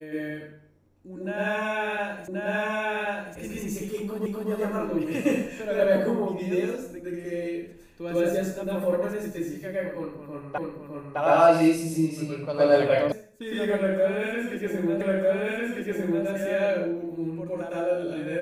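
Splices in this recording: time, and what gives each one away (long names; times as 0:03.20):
0:02.28: the same again, the last 1.08 s
0:04.26: the same again, the last 0.25 s
0:10.58: the same again, the last 0.61 s
0:13.12: cut off before it has died away
0:15.01: the same again, the last 1.25 s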